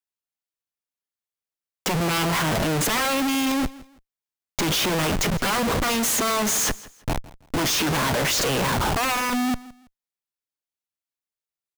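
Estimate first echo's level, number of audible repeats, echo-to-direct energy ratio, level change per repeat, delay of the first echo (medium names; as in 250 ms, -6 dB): -20.0 dB, 2, -19.5 dB, -11.0 dB, 164 ms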